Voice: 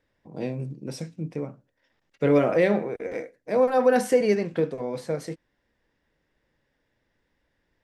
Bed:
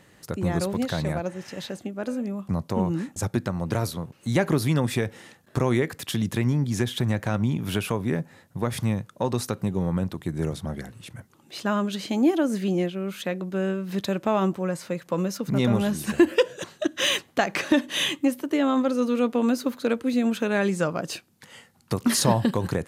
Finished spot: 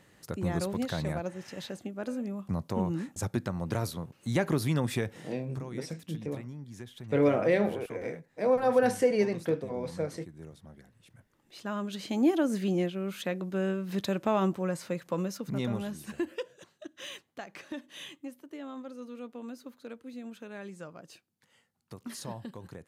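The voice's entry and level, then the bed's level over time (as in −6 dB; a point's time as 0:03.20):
4.90 s, −4.5 dB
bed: 0:05.31 −5.5 dB
0:05.63 −19.5 dB
0:10.88 −19.5 dB
0:12.27 −4 dB
0:14.99 −4 dB
0:16.73 −19.5 dB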